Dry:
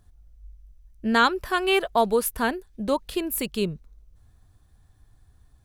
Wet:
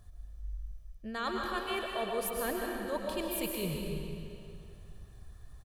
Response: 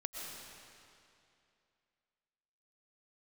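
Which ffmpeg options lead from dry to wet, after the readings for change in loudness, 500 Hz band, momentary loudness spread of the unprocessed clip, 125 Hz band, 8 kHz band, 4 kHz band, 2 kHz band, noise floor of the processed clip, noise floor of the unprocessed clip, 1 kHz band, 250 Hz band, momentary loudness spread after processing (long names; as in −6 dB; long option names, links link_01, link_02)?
−11.5 dB, −10.0 dB, 10 LU, −3.0 dB, −7.5 dB, −10.5 dB, −12.0 dB, −52 dBFS, −59 dBFS, −12.5 dB, −10.5 dB, 19 LU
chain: -filter_complex "[0:a]aecho=1:1:1.7:0.36,areverse,acompressor=threshold=-36dB:ratio=6,areverse[link_01];[1:a]atrim=start_sample=2205[link_02];[link_01][link_02]afir=irnorm=-1:irlink=0,volume=4dB"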